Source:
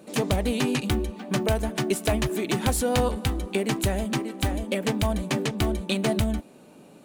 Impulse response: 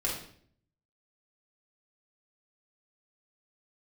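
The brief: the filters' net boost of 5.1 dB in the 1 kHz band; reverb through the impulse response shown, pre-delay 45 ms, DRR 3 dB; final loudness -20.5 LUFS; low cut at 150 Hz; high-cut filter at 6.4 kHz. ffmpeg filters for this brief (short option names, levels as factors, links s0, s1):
-filter_complex "[0:a]highpass=150,lowpass=6400,equalizer=f=1000:t=o:g=7,asplit=2[s0][s1];[1:a]atrim=start_sample=2205,adelay=45[s2];[s1][s2]afir=irnorm=-1:irlink=0,volume=0.355[s3];[s0][s3]amix=inputs=2:normalize=0,volume=1.5"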